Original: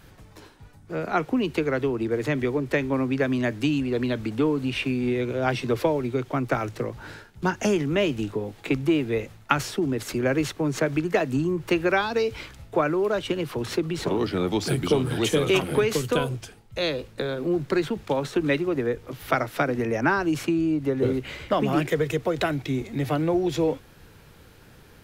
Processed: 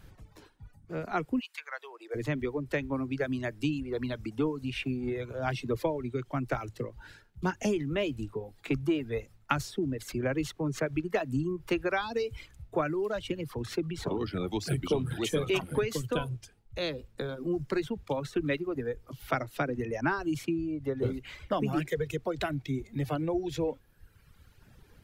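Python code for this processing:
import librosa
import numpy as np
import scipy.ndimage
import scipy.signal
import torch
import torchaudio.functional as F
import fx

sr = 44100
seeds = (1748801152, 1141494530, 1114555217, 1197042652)

y = fx.highpass(x, sr, hz=fx.line((1.39, 1300.0), (2.14, 460.0)), slope=24, at=(1.39, 2.14), fade=0.02)
y = fx.dereverb_blind(y, sr, rt60_s=1.5)
y = fx.low_shelf(y, sr, hz=120.0, db=9.5)
y = y * 10.0 ** (-7.0 / 20.0)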